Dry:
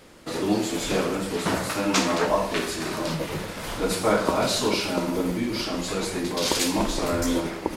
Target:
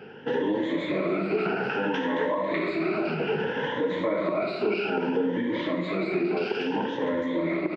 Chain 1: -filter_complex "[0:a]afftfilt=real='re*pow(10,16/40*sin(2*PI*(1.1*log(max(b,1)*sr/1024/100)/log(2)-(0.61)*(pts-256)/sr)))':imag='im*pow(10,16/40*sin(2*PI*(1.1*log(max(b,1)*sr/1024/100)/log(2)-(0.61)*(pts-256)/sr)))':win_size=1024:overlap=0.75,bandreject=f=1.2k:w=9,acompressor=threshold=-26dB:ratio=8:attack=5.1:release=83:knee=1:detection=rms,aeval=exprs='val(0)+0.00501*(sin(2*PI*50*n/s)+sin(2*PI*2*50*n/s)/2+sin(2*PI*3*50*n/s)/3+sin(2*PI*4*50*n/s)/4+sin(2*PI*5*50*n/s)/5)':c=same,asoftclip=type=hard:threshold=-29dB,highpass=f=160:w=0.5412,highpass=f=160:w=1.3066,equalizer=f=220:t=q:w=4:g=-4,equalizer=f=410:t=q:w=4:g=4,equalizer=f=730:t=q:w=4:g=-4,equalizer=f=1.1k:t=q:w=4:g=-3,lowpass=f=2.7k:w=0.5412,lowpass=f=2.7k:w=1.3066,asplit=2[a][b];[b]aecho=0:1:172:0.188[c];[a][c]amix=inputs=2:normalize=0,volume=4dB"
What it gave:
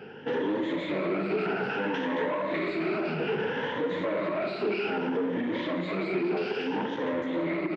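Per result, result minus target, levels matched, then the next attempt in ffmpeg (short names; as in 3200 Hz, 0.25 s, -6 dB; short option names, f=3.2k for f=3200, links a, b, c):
hard clip: distortion +24 dB; echo 0.104 s early
-filter_complex "[0:a]afftfilt=real='re*pow(10,16/40*sin(2*PI*(1.1*log(max(b,1)*sr/1024/100)/log(2)-(0.61)*(pts-256)/sr)))':imag='im*pow(10,16/40*sin(2*PI*(1.1*log(max(b,1)*sr/1024/100)/log(2)-(0.61)*(pts-256)/sr)))':win_size=1024:overlap=0.75,bandreject=f=1.2k:w=9,acompressor=threshold=-26dB:ratio=8:attack=5.1:release=83:knee=1:detection=rms,aeval=exprs='val(0)+0.00501*(sin(2*PI*50*n/s)+sin(2*PI*2*50*n/s)/2+sin(2*PI*3*50*n/s)/3+sin(2*PI*4*50*n/s)/4+sin(2*PI*5*50*n/s)/5)':c=same,asoftclip=type=hard:threshold=-20.5dB,highpass=f=160:w=0.5412,highpass=f=160:w=1.3066,equalizer=f=220:t=q:w=4:g=-4,equalizer=f=410:t=q:w=4:g=4,equalizer=f=730:t=q:w=4:g=-4,equalizer=f=1.1k:t=q:w=4:g=-3,lowpass=f=2.7k:w=0.5412,lowpass=f=2.7k:w=1.3066,asplit=2[a][b];[b]aecho=0:1:172:0.188[c];[a][c]amix=inputs=2:normalize=0,volume=4dB"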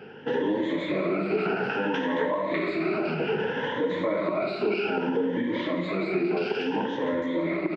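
echo 0.104 s early
-filter_complex "[0:a]afftfilt=real='re*pow(10,16/40*sin(2*PI*(1.1*log(max(b,1)*sr/1024/100)/log(2)-(0.61)*(pts-256)/sr)))':imag='im*pow(10,16/40*sin(2*PI*(1.1*log(max(b,1)*sr/1024/100)/log(2)-(0.61)*(pts-256)/sr)))':win_size=1024:overlap=0.75,bandreject=f=1.2k:w=9,acompressor=threshold=-26dB:ratio=8:attack=5.1:release=83:knee=1:detection=rms,aeval=exprs='val(0)+0.00501*(sin(2*PI*50*n/s)+sin(2*PI*2*50*n/s)/2+sin(2*PI*3*50*n/s)/3+sin(2*PI*4*50*n/s)/4+sin(2*PI*5*50*n/s)/5)':c=same,asoftclip=type=hard:threshold=-20.5dB,highpass=f=160:w=0.5412,highpass=f=160:w=1.3066,equalizer=f=220:t=q:w=4:g=-4,equalizer=f=410:t=q:w=4:g=4,equalizer=f=730:t=q:w=4:g=-4,equalizer=f=1.1k:t=q:w=4:g=-3,lowpass=f=2.7k:w=0.5412,lowpass=f=2.7k:w=1.3066,asplit=2[a][b];[b]aecho=0:1:276:0.188[c];[a][c]amix=inputs=2:normalize=0,volume=4dB"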